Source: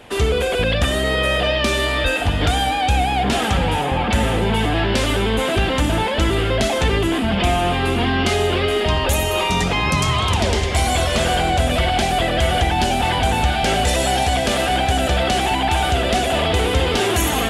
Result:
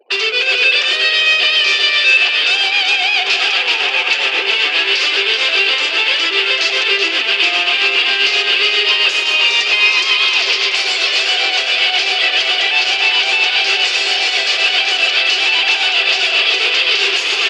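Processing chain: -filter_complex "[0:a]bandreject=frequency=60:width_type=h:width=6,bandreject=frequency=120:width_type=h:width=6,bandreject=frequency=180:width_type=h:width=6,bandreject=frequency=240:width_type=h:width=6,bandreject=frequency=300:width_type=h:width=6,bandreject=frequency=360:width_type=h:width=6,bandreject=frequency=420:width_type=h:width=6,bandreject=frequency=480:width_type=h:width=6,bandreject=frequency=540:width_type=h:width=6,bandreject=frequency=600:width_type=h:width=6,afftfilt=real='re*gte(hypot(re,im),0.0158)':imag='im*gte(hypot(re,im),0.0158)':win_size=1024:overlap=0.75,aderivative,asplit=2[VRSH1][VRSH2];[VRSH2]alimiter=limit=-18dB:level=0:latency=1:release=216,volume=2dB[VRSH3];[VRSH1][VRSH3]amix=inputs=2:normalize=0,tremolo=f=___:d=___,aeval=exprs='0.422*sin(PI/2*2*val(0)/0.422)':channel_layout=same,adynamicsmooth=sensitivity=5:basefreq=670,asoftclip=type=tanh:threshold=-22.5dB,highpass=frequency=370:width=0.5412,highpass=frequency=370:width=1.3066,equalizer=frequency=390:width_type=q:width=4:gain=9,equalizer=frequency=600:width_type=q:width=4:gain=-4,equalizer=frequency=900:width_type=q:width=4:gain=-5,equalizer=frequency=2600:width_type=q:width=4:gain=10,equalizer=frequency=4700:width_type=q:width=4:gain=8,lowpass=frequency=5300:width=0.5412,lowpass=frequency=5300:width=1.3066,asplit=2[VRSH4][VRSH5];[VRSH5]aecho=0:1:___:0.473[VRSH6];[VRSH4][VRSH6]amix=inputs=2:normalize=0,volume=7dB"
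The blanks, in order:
7.5, 0.68, 380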